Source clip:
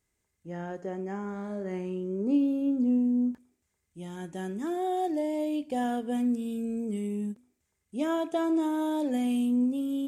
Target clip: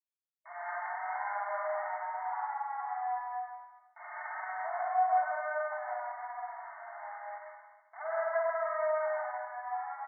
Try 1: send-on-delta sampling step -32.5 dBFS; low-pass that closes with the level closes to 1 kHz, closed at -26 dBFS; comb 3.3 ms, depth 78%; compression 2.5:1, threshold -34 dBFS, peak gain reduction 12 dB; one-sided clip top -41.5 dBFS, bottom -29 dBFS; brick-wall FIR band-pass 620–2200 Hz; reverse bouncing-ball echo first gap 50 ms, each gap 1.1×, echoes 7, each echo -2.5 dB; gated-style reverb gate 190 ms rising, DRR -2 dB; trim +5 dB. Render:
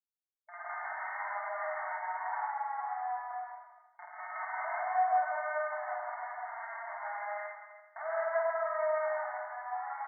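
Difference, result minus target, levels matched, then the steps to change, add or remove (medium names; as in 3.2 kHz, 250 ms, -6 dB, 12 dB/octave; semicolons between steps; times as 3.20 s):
send-on-delta sampling: distortion +10 dB
change: send-on-delta sampling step -42 dBFS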